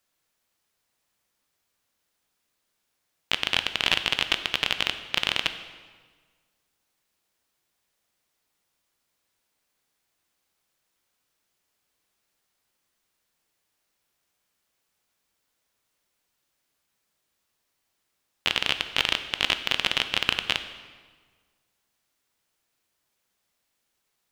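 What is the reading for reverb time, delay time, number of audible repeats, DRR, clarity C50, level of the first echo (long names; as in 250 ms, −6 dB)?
1.5 s, no echo audible, no echo audible, 9.0 dB, 11.0 dB, no echo audible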